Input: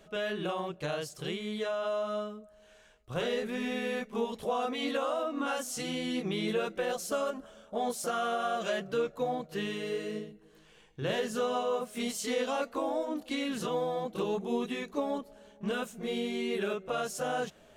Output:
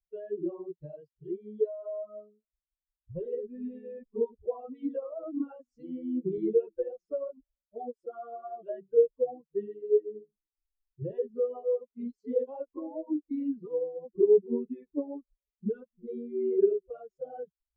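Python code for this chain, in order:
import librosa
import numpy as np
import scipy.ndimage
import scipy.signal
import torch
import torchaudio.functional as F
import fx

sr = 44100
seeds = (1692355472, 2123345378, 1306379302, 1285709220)

y = fx.bin_expand(x, sr, power=3.0)
y = fx.lowpass_res(y, sr, hz=410.0, q=4.9)
y = fx.band_squash(y, sr, depth_pct=40, at=(5.23, 6.38))
y = F.gain(torch.from_numpy(y), 3.5).numpy()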